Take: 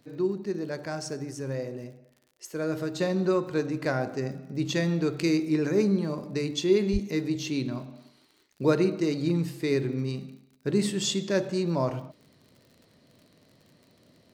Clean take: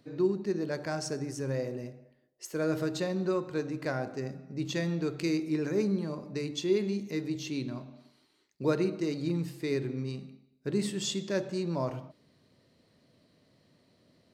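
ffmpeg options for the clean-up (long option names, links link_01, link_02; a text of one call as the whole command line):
ffmpeg -i in.wav -filter_complex "[0:a]adeclick=threshold=4,asplit=3[link_01][link_02][link_03];[link_01]afade=type=out:start_time=6.92:duration=0.02[link_04];[link_02]highpass=frequency=140:width=0.5412,highpass=frequency=140:width=1.3066,afade=type=in:start_time=6.92:duration=0.02,afade=type=out:start_time=7.04:duration=0.02[link_05];[link_03]afade=type=in:start_time=7.04:duration=0.02[link_06];[link_04][link_05][link_06]amix=inputs=3:normalize=0,asetnsamples=nb_out_samples=441:pad=0,asendcmd='3 volume volume -5dB',volume=0dB" out.wav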